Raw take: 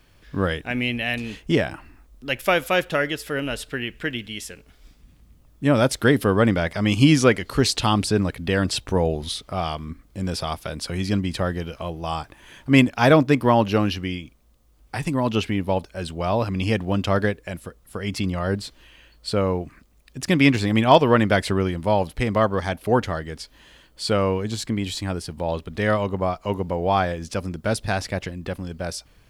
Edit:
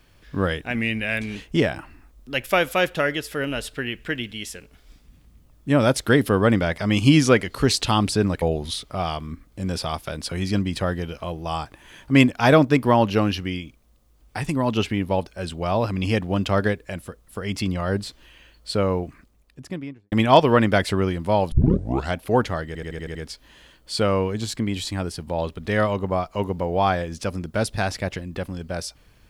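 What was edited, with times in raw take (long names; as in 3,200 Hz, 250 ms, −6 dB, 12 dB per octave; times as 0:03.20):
0:00.75–0:01.31: play speed 92%
0:08.37–0:09.00: remove
0:19.63–0:20.70: fade out and dull
0:22.10: tape start 0.63 s
0:23.25: stutter 0.08 s, 7 plays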